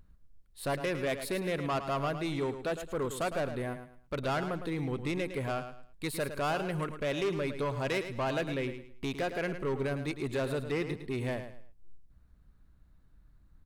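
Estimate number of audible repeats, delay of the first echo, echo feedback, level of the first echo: 3, 0.108 s, 28%, -10.0 dB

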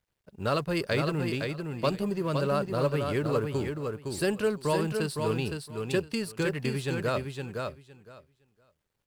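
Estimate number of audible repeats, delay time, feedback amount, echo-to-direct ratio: 2, 0.512 s, 16%, -5.0 dB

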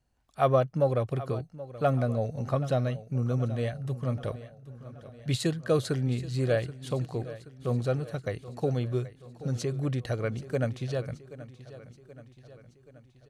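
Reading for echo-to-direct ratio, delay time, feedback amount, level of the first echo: -14.5 dB, 0.778 s, 56%, -16.0 dB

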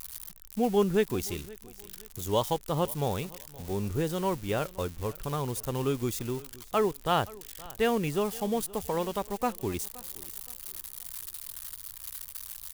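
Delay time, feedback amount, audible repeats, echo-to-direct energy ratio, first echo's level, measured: 0.522 s, 35%, 2, -20.5 dB, -21.0 dB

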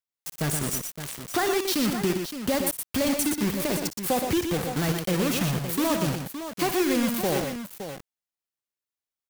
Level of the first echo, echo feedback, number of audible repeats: -13.0 dB, no steady repeat, 3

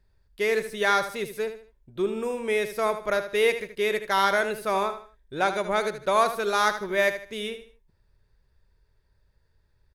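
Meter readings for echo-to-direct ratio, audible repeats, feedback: -10.0 dB, 3, 32%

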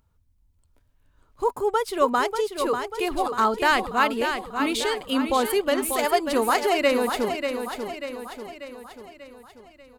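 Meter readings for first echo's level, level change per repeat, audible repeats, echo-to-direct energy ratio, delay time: -7.0 dB, -5.5 dB, 5, -5.5 dB, 0.59 s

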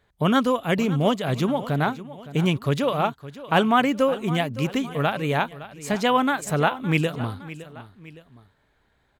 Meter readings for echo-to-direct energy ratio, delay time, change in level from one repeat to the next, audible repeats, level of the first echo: -15.0 dB, 0.563 s, -6.5 dB, 2, -16.0 dB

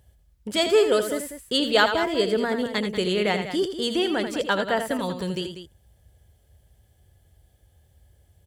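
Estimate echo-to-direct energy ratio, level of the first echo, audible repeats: -6.5 dB, -8.5 dB, 2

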